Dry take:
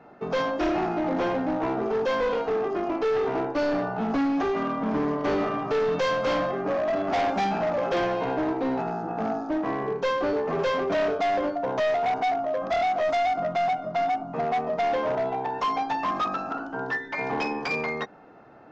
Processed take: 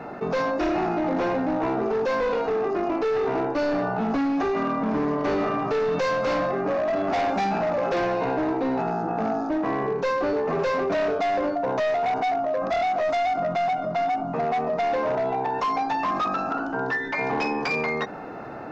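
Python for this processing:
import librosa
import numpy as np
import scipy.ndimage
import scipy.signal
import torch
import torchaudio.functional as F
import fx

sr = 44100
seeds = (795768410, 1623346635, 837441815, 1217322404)

y = fx.notch(x, sr, hz=3200.0, q=16.0)
y = fx.env_flatten(y, sr, amount_pct=50)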